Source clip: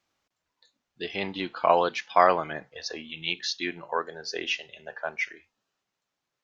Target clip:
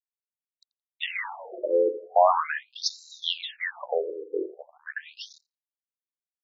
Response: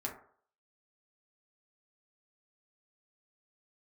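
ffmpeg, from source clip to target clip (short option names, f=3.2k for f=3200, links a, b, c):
-filter_complex "[0:a]asettb=1/sr,asplit=3[a][b][c];[a]atrim=end=1.194[d];[b]atrim=start=1.19:end=1.76,asetpts=PTS-STARTPTS,afade=t=in:d=0.004:c=qsin,afade=t=out:st=0.566:d=0.004:c=qsin,aeval=exprs='val(0)+0.5*0.0211*sgn(val(0))':c=same[e];[c]atrim=start=1.756[f];[d][e]acrossfade=d=0.004:c1=hsin:c2=qsin[g];[g][f]acrossfade=d=0.004:c1=qsin:c2=hsin,bandreject=f=60:t=h:w=6,bandreject=f=120:t=h:w=6,bandreject=f=180:t=h:w=6,bandreject=f=240:t=h:w=6,bandreject=f=300:t=h:w=6,bandreject=f=360:t=h:w=6,bandreject=f=420:t=h:w=6,bandreject=f=480:t=h:w=6,bandreject=f=540:t=h:w=6,asplit=2[h][i];[i]alimiter=limit=-15.5dB:level=0:latency=1:release=106,volume=3dB[j];[h][j]amix=inputs=2:normalize=0,acrusher=bits=5:mix=0:aa=0.5,asplit=2[k][l];[l]adelay=85,lowpass=f=1.3k:p=1,volume=-13dB,asplit=2[m][n];[n]adelay=85,lowpass=f=1.3k:p=1,volume=0.37,asplit=2[o][p];[p]adelay=85,lowpass=f=1.3k:p=1,volume=0.37,asplit=2[q][r];[r]adelay=85,lowpass=f=1.3k:p=1,volume=0.37[s];[m][o][q][s]amix=inputs=4:normalize=0[t];[k][t]amix=inputs=2:normalize=0,afftfilt=real='re*between(b*sr/1024,380*pow(5400/380,0.5+0.5*sin(2*PI*0.41*pts/sr))/1.41,380*pow(5400/380,0.5+0.5*sin(2*PI*0.41*pts/sr))*1.41)':imag='im*between(b*sr/1024,380*pow(5400/380,0.5+0.5*sin(2*PI*0.41*pts/sr))/1.41,380*pow(5400/380,0.5+0.5*sin(2*PI*0.41*pts/sr))*1.41)':win_size=1024:overlap=0.75"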